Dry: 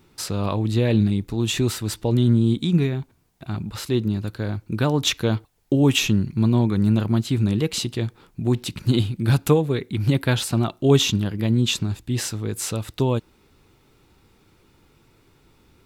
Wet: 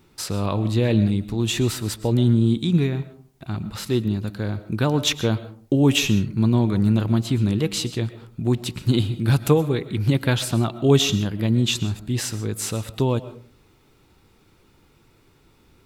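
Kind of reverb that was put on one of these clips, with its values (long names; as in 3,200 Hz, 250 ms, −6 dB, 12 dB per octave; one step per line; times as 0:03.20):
comb and all-pass reverb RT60 0.45 s, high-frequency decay 0.4×, pre-delay 85 ms, DRR 14 dB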